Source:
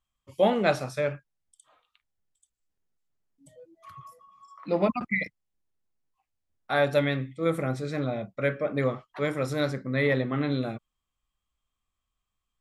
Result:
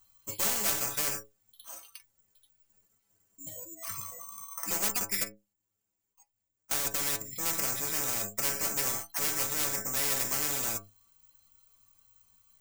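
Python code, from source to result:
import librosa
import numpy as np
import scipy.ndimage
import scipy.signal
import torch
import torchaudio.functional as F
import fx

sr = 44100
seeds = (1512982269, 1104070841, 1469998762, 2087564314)

y = fx.diode_clip(x, sr, knee_db=-26.5)
y = (np.kron(scipy.signal.resample_poly(y, 1, 6), np.eye(6)[0]) * 6)[:len(y)]
y = fx.level_steps(y, sr, step_db=24, at=(5.24, 7.33))
y = fx.stiff_resonator(y, sr, f0_hz=100.0, decay_s=0.24, stiffness=0.008)
y = fx.spectral_comp(y, sr, ratio=4.0)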